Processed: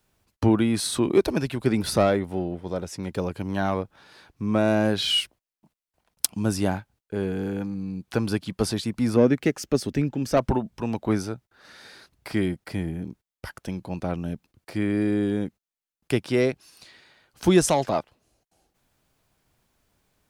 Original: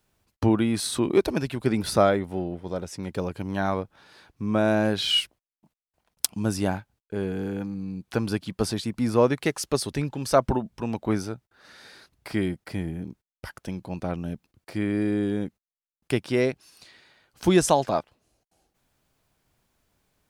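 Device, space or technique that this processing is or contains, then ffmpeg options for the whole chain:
one-band saturation: -filter_complex "[0:a]asettb=1/sr,asplit=3[a][b][c];[a]atrim=end=9.164[d];[b]atrim=start=9.16:end=10.37,asetpts=PTS-STARTPTS,afade=t=in:d=0.004:c=qsin,afade=t=out:st=1.206:d=0.004:c=qsin,equalizer=f=250:t=o:w=0.67:g=6,equalizer=f=1k:t=o:w=0.67:g=-8,equalizer=f=4k:t=o:w=0.67:g=-7,equalizer=f=10k:t=o:w=0.67:g=-10[e];[c]atrim=start=10.366[f];[d][e]acrossfade=d=0.004:c1=hsin:c2=qsin[g];[g][f]acrossfade=d=0.004:c1=qsin:c2=hsin,acrossover=split=470|4600[h][i][j];[i]asoftclip=type=tanh:threshold=-19.5dB[k];[h][k][j]amix=inputs=3:normalize=0,volume=1.5dB"

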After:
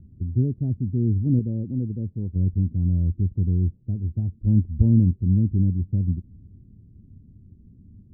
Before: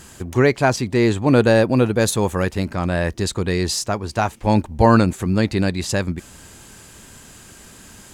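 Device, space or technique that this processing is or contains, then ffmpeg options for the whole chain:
the neighbour's flat through the wall: -filter_complex "[0:a]lowpass=f=250:w=0.5412,lowpass=f=250:w=1.3066,equalizer=f=91:t=o:w=0.63:g=8,asettb=1/sr,asplit=3[a][b][c];[a]atrim=end=1.394[d];[b]atrim=start=1.39:end=2.36,asetpts=PTS-STARTPTS,afade=t=in:d=0.004:c=qsin,afade=t=out:st=0.966:d=0.004:c=qsin,lowshelf=f=310:g=-7.5[e];[c]atrim=start=2.356[f];[d][e]acrossfade=d=0.004:c1=hsin:c2=qsin[g];[g][f]acrossfade=d=0.004:c1=qsin:c2=hsin,volume=-2.5dB"

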